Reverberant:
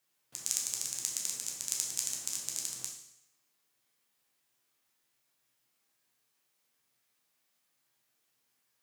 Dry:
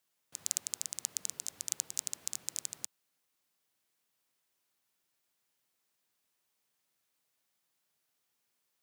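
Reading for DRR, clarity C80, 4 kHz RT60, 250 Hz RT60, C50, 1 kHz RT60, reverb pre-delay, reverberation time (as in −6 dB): −1.5 dB, 8.0 dB, 0.75 s, 0.75 s, 5.0 dB, 0.80 s, 9 ms, 0.80 s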